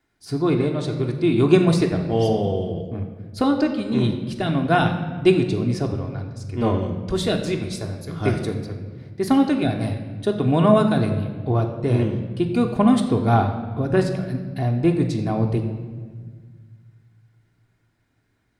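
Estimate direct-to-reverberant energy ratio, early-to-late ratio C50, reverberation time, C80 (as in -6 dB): 2.0 dB, 7.5 dB, 1.6 s, 9.5 dB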